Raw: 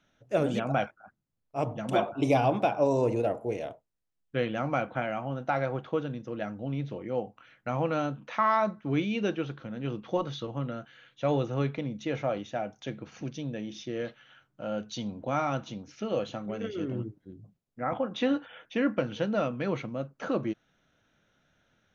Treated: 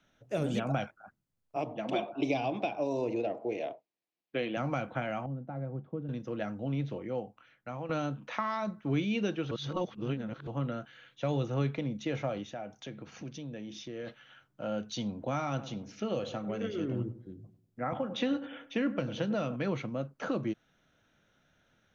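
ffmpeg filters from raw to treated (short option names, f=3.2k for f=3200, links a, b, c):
-filter_complex "[0:a]asettb=1/sr,asplit=3[a][b][c];[a]atrim=end=1.564[d];[b]atrim=start=1.56:end=4.57,asetpts=PTS-STARTPTS,afade=t=in:d=0.004:c=qsin,afade=t=out:st=3.006:d=0.004:c=qsin,highpass=240,equalizer=f=330:t=q:w=4:g=5,equalizer=f=690:t=q:w=4:g=4,equalizer=f=1.4k:t=q:w=4:g=-5,equalizer=f=2.4k:t=q:w=4:g=5,lowpass=f=5.2k:w=0.5412,lowpass=f=5.2k:w=1.3066[e];[c]atrim=start=4.566[f];[d][e]acrossfade=d=0.004:c1=hsin:c2=qsin[g];[g][f]acrossfade=d=0.004:c1=qsin:c2=hsin,asettb=1/sr,asplit=3[h][i][j];[h]atrim=end=5.264[k];[i]atrim=start=5.26:end=6.09,asetpts=PTS-STARTPTS,afade=t=in:d=0.004:c=qsin,afade=t=out:st=0.826:d=0.004:c=qsin,bandpass=f=170:t=q:w=1.4[l];[j]atrim=start=6.086[m];[k][l]acrossfade=d=0.004:c1=hsin:c2=qsin[n];[n][m]acrossfade=d=0.004:c1=qsin:c2=hsin,asplit=3[o][p][q];[o]afade=t=out:st=12.44:d=0.02[r];[p]acompressor=threshold=-42dB:ratio=2:attack=3.2:release=140:knee=1:detection=peak,afade=t=in:st=12.44:d=0.02,afade=t=out:st=14.06:d=0.02[s];[q]afade=t=in:st=14.06:d=0.02[t];[r][s][t]amix=inputs=3:normalize=0,asettb=1/sr,asplit=3[u][v][w];[u]atrim=end=15.484[x];[v]atrim=start=15.48:end=19.56,asetpts=PTS-STARTPTS,afade=t=in:d=0.004:c=qsin,afade=t=out:st=4.076:d=0.004:c=qsin,asplit=2[y][z];[z]adelay=98,lowpass=f=1.1k:p=1,volume=-13.5dB,asplit=2[aa][ab];[ab]adelay=98,lowpass=f=1.1k:p=1,volume=0.42,asplit=2[ac][ad];[ad]adelay=98,lowpass=f=1.1k:p=1,volume=0.42,asplit=2[ae][af];[af]adelay=98,lowpass=f=1.1k:p=1,volume=0.42[ag];[y][aa][ac][ae][ag]amix=inputs=5:normalize=0,atrim=end_sample=179928[ah];[w]atrim=start=19.556[ai];[x][ah]acrossfade=d=0.004:c1=hsin:c2=qsin[aj];[aj][ai]acrossfade=d=0.004:c1=qsin:c2=hsin,asplit=4[ak][al][am][an];[ak]atrim=end=7.89,asetpts=PTS-STARTPTS,afade=t=out:st=6.84:d=1.05:silence=0.237137[ao];[al]atrim=start=7.89:end=9.512,asetpts=PTS-STARTPTS,afade=t=in:d=0.004:c=hsin:silence=0.237137[ap];[am]atrim=start=9.508:end=10.472,asetpts=PTS-STARTPTS,areverse[aq];[an]atrim=start=10.468[ar];[ao][ap]concat=n=2:v=0:a=1[as];[as][aq]acrossfade=d=0.004:c1=hsin:c2=hsin[at];[at][ar]acrossfade=d=0.004:c1=hsin:c2=hsin,acrossover=split=230|3000[au][av][aw];[av]acompressor=threshold=-31dB:ratio=6[ax];[au][ax][aw]amix=inputs=3:normalize=0"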